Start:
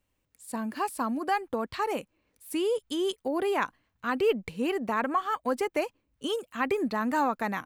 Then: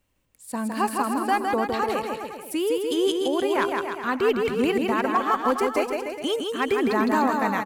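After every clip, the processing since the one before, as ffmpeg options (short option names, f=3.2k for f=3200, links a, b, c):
-af "tremolo=f=1.3:d=0.3,asoftclip=type=hard:threshold=-20dB,aecho=1:1:160|296|411.6|509.9|593.4:0.631|0.398|0.251|0.158|0.1,volume=5.5dB"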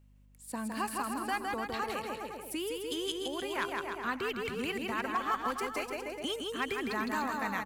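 -filter_complex "[0:a]acrossover=split=150|1200[a][b][c];[b]acompressor=threshold=-31dB:ratio=6[d];[a][d][c]amix=inputs=3:normalize=0,aeval=exprs='val(0)+0.002*(sin(2*PI*50*n/s)+sin(2*PI*2*50*n/s)/2+sin(2*PI*3*50*n/s)/3+sin(2*PI*4*50*n/s)/4+sin(2*PI*5*50*n/s)/5)':c=same,volume=-5.5dB"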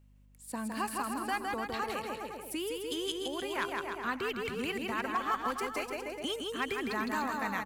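-af anull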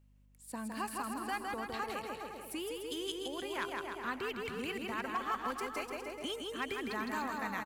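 -af "aecho=1:1:458:0.211,volume=-4dB"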